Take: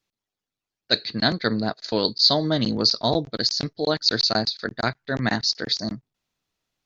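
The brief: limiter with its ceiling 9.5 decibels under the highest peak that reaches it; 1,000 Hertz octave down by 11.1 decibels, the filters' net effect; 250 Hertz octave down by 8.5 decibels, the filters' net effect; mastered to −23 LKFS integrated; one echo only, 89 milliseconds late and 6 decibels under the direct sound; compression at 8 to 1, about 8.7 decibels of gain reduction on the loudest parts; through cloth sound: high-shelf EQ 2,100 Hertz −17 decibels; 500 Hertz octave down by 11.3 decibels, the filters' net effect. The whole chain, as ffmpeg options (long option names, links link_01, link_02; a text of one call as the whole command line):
ffmpeg -i in.wav -af "equalizer=frequency=250:width_type=o:gain=-8,equalizer=frequency=500:width_type=o:gain=-8.5,equalizer=frequency=1000:width_type=o:gain=-7.5,acompressor=threshold=-23dB:ratio=8,alimiter=limit=-20dB:level=0:latency=1,highshelf=frequency=2100:gain=-17,aecho=1:1:89:0.501,volume=13.5dB" out.wav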